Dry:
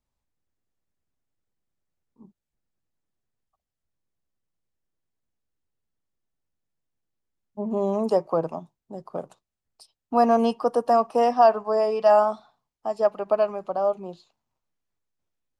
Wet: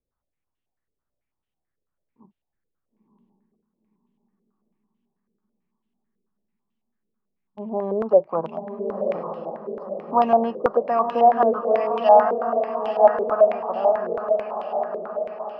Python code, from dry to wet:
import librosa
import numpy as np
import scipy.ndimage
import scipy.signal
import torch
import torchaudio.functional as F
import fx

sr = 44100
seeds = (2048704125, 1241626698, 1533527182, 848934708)

y = fx.echo_diffused(x, sr, ms=982, feedback_pct=55, wet_db=-5)
y = fx.filter_held_lowpass(y, sr, hz=9.1, low_hz=460.0, high_hz=3000.0)
y = y * 10.0 ** (-4.0 / 20.0)